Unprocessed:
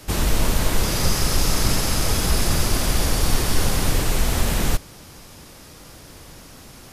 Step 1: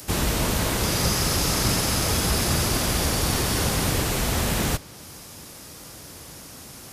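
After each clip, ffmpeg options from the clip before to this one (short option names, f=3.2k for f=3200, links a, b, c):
-filter_complex "[0:a]highpass=63,acrossover=split=5500[a][b];[b]acompressor=mode=upward:threshold=-38dB:ratio=2.5[c];[a][c]amix=inputs=2:normalize=0"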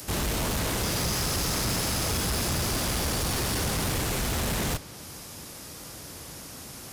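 -af "asoftclip=type=tanh:threshold=-24dB"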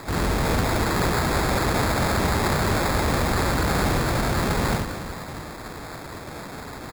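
-af "aecho=1:1:70|182|361.2|647.9|1107:0.631|0.398|0.251|0.158|0.1,acrusher=samples=15:mix=1:aa=0.000001,volume=3.5dB"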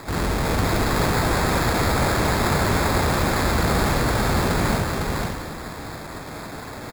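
-af "aecho=1:1:505:0.708"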